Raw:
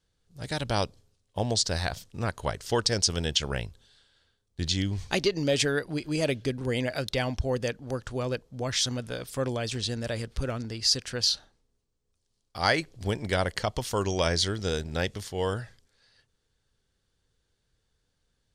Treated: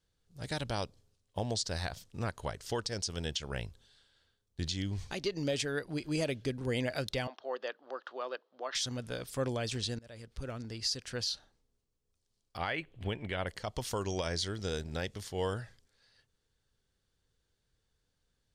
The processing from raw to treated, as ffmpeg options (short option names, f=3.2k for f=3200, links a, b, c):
-filter_complex "[0:a]asettb=1/sr,asplit=3[a][b][c];[a]atrim=end=7.274[d];[b]atrim=start=7.27:end=8.75,asetpts=PTS-STARTPTS,afade=t=in:d=0.004:c=qsin,afade=t=out:st=1.476:d=0.004:c=qsin,highpass=f=420:w=0.5412,highpass=f=420:w=1.3066,equalizer=f=460:t=q:w=4:g=-6,equalizer=f=1.2k:t=q:w=4:g=5,equalizer=f=2.3k:t=q:w=4:g=-8,lowpass=f=3.9k:w=0.5412,lowpass=f=3.9k:w=1.3066[e];[c]atrim=start=8.746[f];[d][e]acrossfade=d=0.004:c1=hsin:c2=qsin[g];[g][f]acrossfade=d=0.004:c1=qsin:c2=hsin,asettb=1/sr,asplit=3[h][i][j];[h]atrim=end=12.574[k];[i]atrim=start=12.57:end=13.47,asetpts=PTS-STARTPTS,afade=t=in:d=0.004:c=qsin,afade=t=out:st=0.896:d=0.004:c=qsin,highshelf=f=3.9k:t=q:w=3:g=-10.5[l];[j]atrim=start=13.466[m];[k][l]acrossfade=d=0.004:c1=hsin:c2=qsin[n];[n][m]acrossfade=d=0.004:c1=qsin:c2=hsin,asplit=2[o][p];[o]atrim=end=9.99,asetpts=PTS-STARTPTS,afade=t=out:st=9.986:d=0.004:c=hsin:silence=0.0707946[q];[p]atrim=start=9.99,asetpts=PTS-STARTPTS,afade=t=in:d=0.97:silence=0.0707946[r];[q][r]concat=n=2:v=0:a=1,alimiter=limit=-18.5dB:level=0:latency=1:release=310,volume=-4dB"